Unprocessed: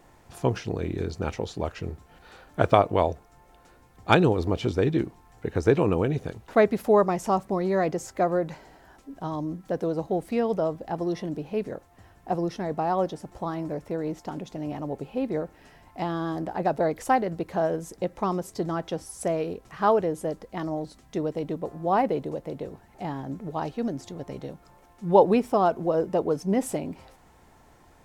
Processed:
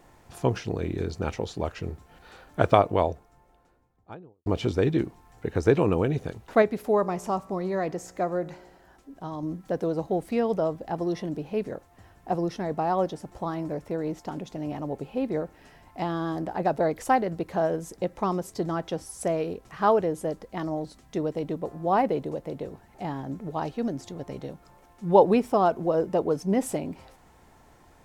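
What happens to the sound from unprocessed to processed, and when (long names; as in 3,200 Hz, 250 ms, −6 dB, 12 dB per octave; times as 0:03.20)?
0:02.69–0:04.46: fade out and dull
0:06.62–0:09.43: tuned comb filter 60 Hz, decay 1.1 s, mix 40%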